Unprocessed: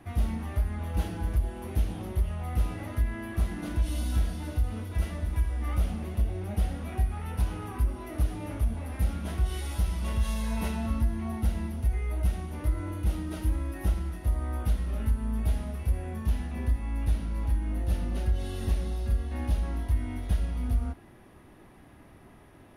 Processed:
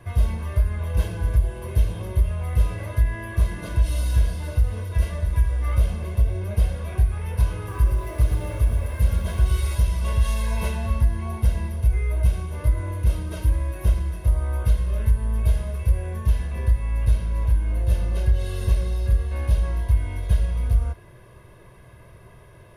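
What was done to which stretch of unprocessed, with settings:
7.56–9.75 s: bit-crushed delay 118 ms, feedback 35%, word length 9-bit, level -5.5 dB
whole clip: peaking EQ 120 Hz +7.5 dB 0.29 oct; comb 1.9 ms, depth 83%; trim +2.5 dB

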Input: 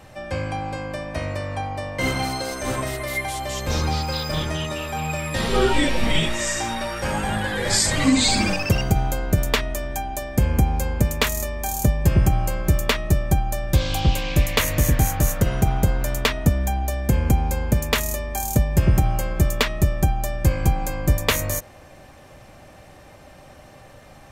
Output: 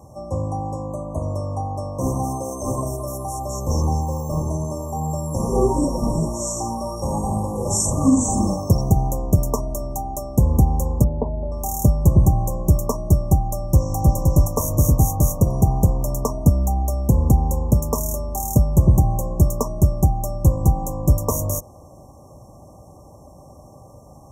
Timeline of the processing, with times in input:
0.90–1.23 s: spectral selection erased 2.2–5.9 kHz
11.04–11.52 s: steep low-pass 930 Hz 72 dB/octave
13.50–13.95 s: echo throw 520 ms, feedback 30%, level -3.5 dB
whole clip: high-pass 50 Hz; FFT band-reject 1.2–5.4 kHz; bass shelf 250 Hz +5 dB

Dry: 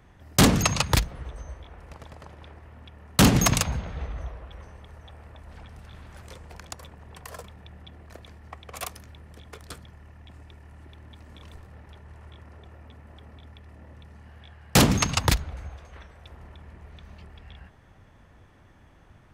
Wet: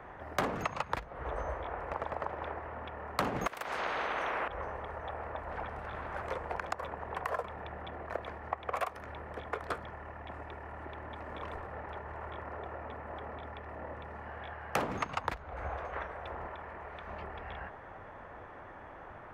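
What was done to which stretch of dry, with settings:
3.47–4.48 s: spectrum-flattening compressor 10:1
16.47–17.07 s: bass shelf 450 Hz -6 dB
whole clip: three-band isolator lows -18 dB, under 430 Hz, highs -17 dB, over 2.2 kHz; compression 10:1, threshold -44 dBFS; treble shelf 2.6 kHz -10.5 dB; trim +15.5 dB

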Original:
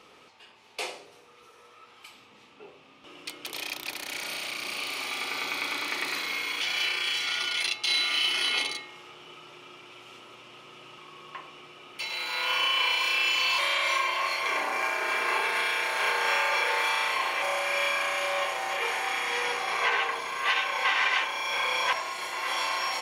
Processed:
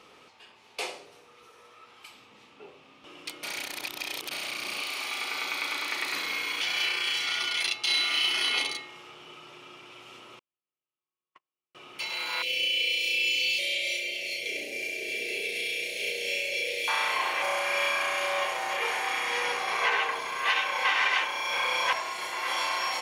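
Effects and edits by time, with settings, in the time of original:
3.43–4.31 s: reverse
4.82–6.13 s: bass shelf 340 Hz -8 dB
10.39–11.75 s: gate -36 dBFS, range -51 dB
12.42–16.88 s: Chebyshev band-stop 530–2400 Hz, order 3

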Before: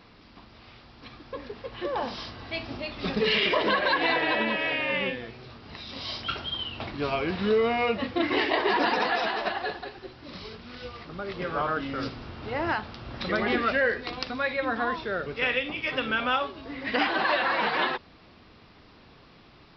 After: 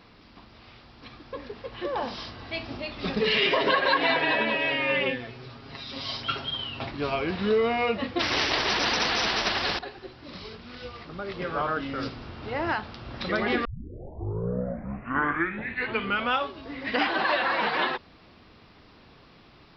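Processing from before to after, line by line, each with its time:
3.36–6.91 s: comb 7.4 ms
8.19–9.79 s: spectrum-flattening compressor 4:1
13.65 s: tape start 2.70 s

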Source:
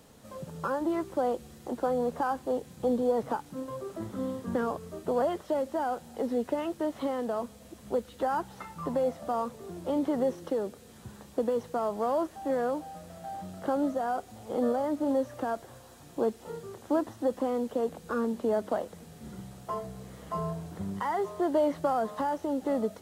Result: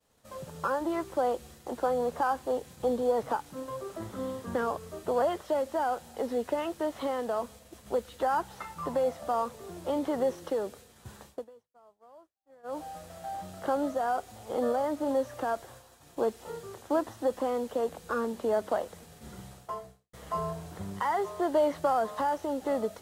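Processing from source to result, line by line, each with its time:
11.27–12.81 s: dip -23.5 dB, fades 0.18 s
19.46–20.13 s: fade out
whole clip: expander -46 dBFS; peaking EQ 210 Hz -8 dB 1.9 oct; trim +3 dB

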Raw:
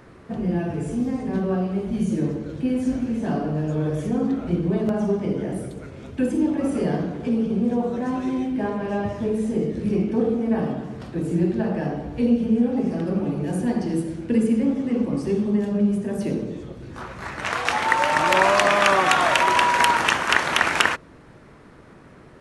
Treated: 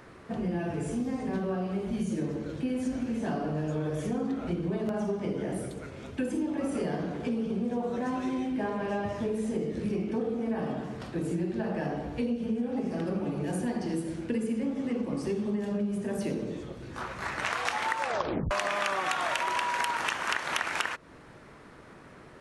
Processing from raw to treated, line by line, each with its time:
18.01 s: tape stop 0.50 s
whole clip: bass shelf 440 Hz -6 dB; compression, threshold -27 dBFS

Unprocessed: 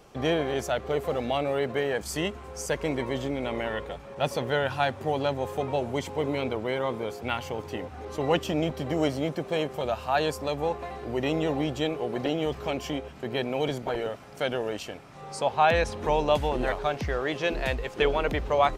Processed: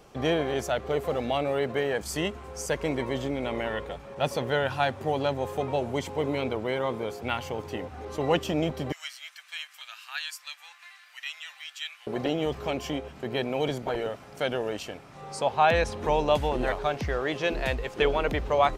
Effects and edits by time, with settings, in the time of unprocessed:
8.92–12.07 s: inverse Chebyshev high-pass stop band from 360 Hz, stop band 70 dB

